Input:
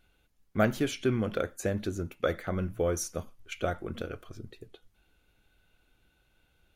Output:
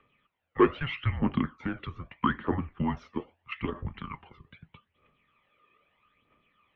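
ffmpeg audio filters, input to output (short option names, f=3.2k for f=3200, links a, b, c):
-filter_complex "[0:a]aphaser=in_gain=1:out_gain=1:delay=1.5:decay=0.58:speed=0.79:type=triangular,asplit=3[a][b][c];[a]afade=t=out:st=3.59:d=0.02[d];[b]asubboost=boost=6.5:cutoff=200,afade=t=in:st=3.59:d=0.02,afade=t=out:st=4.28:d=0.02[e];[c]afade=t=in:st=4.28:d=0.02[f];[d][e][f]amix=inputs=3:normalize=0,afreqshift=-100,asoftclip=type=tanh:threshold=-11.5dB,highpass=f=270:t=q:w=0.5412,highpass=f=270:t=q:w=1.307,lowpass=f=3.2k:t=q:w=0.5176,lowpass=f=3.2k:t=q:w=0.7071,lowpass=f=3.2k:t=q:w=1.932,afreqshift=-180,volume=3.5dB"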